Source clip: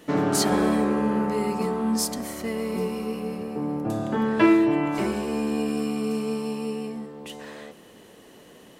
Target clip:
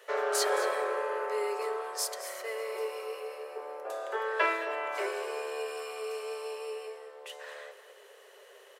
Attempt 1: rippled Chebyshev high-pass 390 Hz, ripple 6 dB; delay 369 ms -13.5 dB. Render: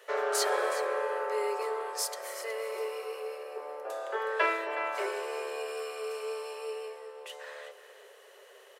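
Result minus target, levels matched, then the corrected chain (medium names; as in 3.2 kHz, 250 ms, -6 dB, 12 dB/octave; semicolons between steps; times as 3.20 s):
echo 150 ms late
rippled Chebyshev high-pass 390 Hz, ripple 6 dB; delay 219 ms -13.5 dB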